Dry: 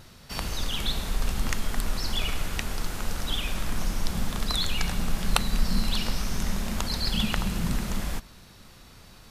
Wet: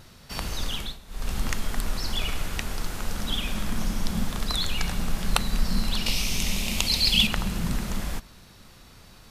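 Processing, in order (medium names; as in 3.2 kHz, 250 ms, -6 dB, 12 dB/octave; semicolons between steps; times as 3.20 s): 0.72–1.34 s: dip -16.5 dB, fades 0.26 s; 3.14–4.25 s: small resonant body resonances 210/3300 Hz, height 7 dB; 6.06–7.27 s: resonant high shelf 2 kHz +7 dB, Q 3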